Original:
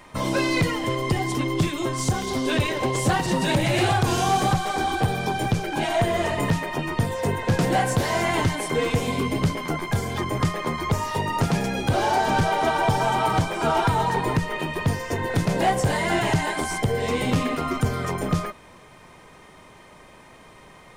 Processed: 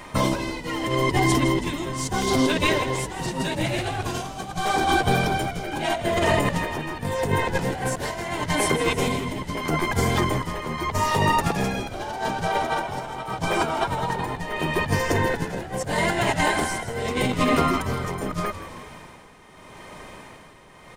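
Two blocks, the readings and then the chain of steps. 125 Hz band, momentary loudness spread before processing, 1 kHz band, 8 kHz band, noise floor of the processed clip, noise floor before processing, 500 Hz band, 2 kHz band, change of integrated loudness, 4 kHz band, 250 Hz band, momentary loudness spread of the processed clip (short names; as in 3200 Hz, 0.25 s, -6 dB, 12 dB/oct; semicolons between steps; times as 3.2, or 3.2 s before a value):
-3.5 dB, 5 LU, -1.0 dB, +0.5 dB, -46 dBFS, -48 dBFS, -0.5 dB, +1.0 dB, -0.5 dB, +0.5 dB, -0.5 dB, 9 LU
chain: negative-ratio compressor -25 dBFS, ratio -0.5; tremolo 0.8 Hz, depth 69%; on a send: frequency-shifting echo 0.162 s, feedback 50%, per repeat -82 Hz, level -12 dB; on the sum: gain +4.5 dB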